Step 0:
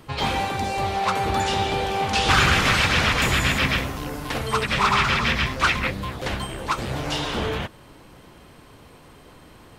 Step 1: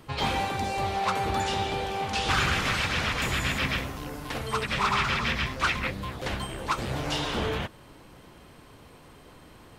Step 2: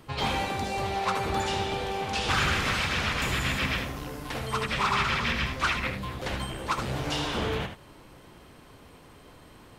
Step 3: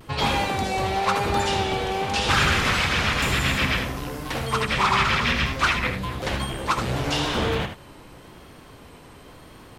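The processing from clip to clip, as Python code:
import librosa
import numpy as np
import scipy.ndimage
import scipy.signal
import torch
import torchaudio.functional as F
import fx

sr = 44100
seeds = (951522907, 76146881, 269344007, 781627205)

y1 = fx.rider(x, sr, range_db=3, speed_s=2.0)
y1 = y1 * librosa.db_to_amplitude(-6.0)
y2 = y1 + 10.0 ** (-8.0 / 20.0) * np.pad(y1, (int(77 * sr / 1000.0), 0))[:len(y1)]
y2 = y2 * librosa.db_to_amplitude(-1.0)
y3 = fx.vibrato(y2, sr, rate_hz=0.97, depth_cents=50.0)
y3 = y3 * librosa.db_to_amplitude(5.5)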